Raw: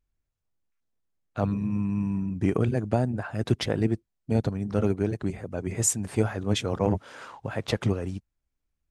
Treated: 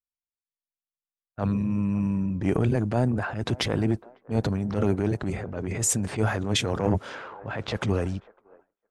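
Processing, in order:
low-pass that shuts in the quiet parts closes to 1,300 Hz, open at −23 dBFS
transient designer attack −8 dB, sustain +6 dB
on a send: delay with a band-pass on its return 553 ms, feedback 59%, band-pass 780 Hz, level −18 dB
on the sum: downward expander −42 dBFS
level +2 dB

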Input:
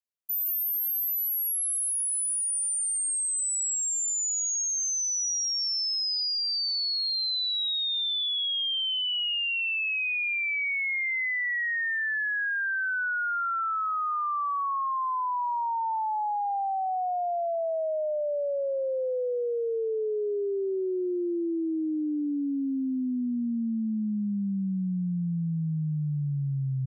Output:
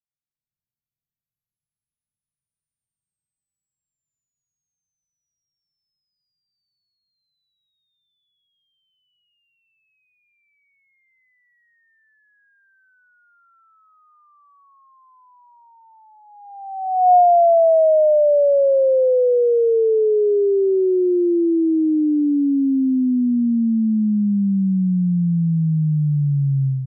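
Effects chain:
automatic gain control gain up to 14 dB
brickwall limiter −15 dBFS, peak gain reduction 3.5 dB
low-pass filter sweep 140 Hz → 910 Hz, 0:16.23–0:17.25

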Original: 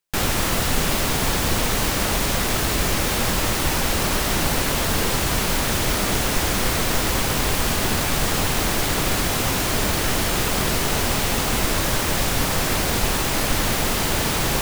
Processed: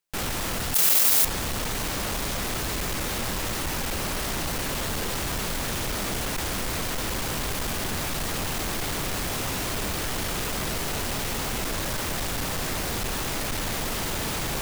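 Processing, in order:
soft clipping −23.5 dBFS, distortion −9 dB
0:00.74–0:01.25: RIAA equalisation recording
level −2 dB

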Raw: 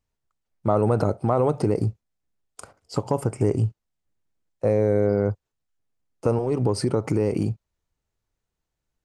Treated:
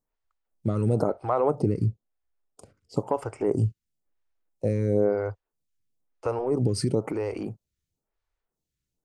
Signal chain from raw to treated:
0:01.55–0:02.97: high-shelf EQ 3,600 Hz −11.5 dB
phaser with staggered stages 1 Hz

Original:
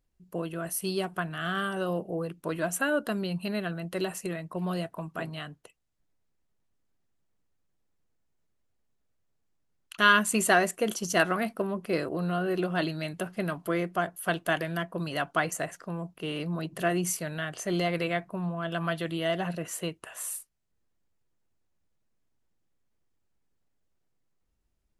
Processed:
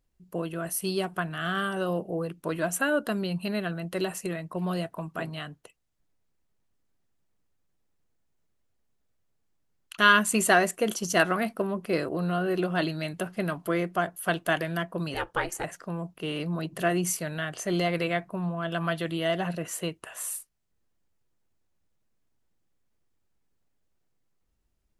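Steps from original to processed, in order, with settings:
0:15.14–0:15.64: ring modulation 180 Hz
level +1.5 dB

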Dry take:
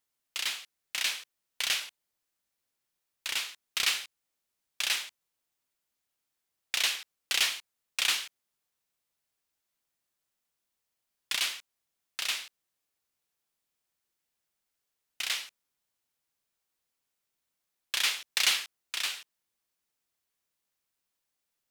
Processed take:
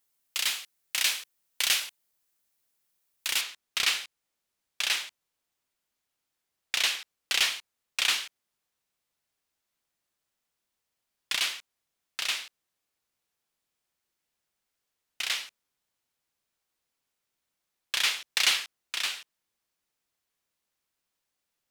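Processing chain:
high-shelf EQ 7,800 Hz +7.5 dB, from 0:03.41 −4.5 dB
level +2.5 dB

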